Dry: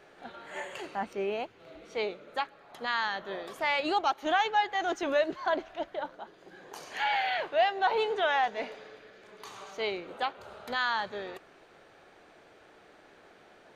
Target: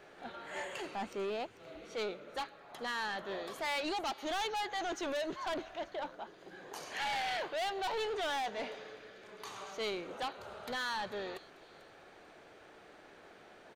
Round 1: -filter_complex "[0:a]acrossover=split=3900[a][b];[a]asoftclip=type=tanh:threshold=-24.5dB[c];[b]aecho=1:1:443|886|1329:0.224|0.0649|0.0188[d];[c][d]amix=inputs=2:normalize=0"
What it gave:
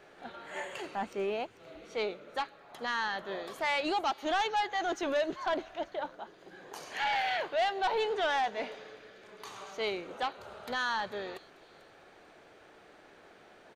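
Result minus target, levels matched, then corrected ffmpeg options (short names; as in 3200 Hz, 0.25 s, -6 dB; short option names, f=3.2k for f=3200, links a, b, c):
soft clip: distortion -8 dB
-filter_complex "[0:a]acrossover=split=3900[a][b];[a]asoftclip=type=tanh:threshold=-34dB[c];[b]aecho=1:1:443|886|1329:0.224|0.0649|0.0188[d];[c][d]amix=inputs=2:normalize=0"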